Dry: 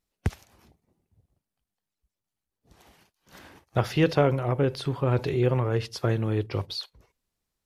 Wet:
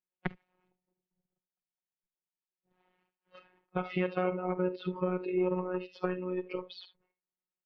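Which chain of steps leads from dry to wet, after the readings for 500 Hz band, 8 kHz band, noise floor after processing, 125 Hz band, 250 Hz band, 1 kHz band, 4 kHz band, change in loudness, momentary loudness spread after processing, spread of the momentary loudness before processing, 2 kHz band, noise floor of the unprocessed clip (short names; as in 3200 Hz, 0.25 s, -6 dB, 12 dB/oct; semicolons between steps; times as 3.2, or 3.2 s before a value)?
-6.0 dB, under -30 dB, under -85 dBFS, -15.5 dB, -5.0 dB, -6.0 dB, -14.0 dB, -7.5 dB, 10 LU, 10 LU, -6.5 dB, under -85 dBFS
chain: dynamic EQ 2100 Hz, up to +5 dB, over -54 dBFS, Q 4; in parallel at -1 dB: level quantiser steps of 24 dB; on the sum: comb 2.3 ms, depth 30%; one-sided clip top -15 dBFS; on a send: tapped delay 49/67/78 ms -17.5/-17/-15.5 dB; on the sum: compressor 3:1, threshold -30 dBFS, peak gain reduction 11.5 dB; spectral noise reduction 17 dB; HPF 100 Hz; robotiser 182 Hz; LPF 2800 Hz 24 dB/oct; gain +2 dB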